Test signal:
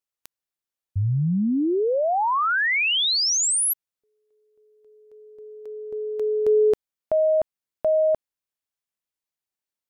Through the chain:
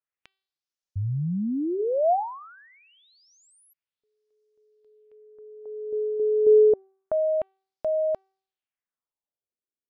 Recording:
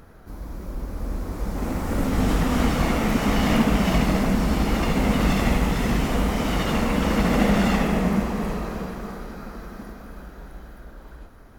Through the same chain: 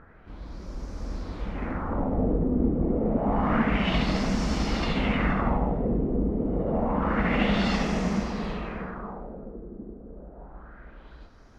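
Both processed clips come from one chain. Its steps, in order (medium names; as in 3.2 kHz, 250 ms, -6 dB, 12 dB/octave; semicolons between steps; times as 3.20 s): de-hum 384.6 Hz, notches 13; LFO low-pass sine 0.28 Hz 380–5900 Hz; trim -5 dB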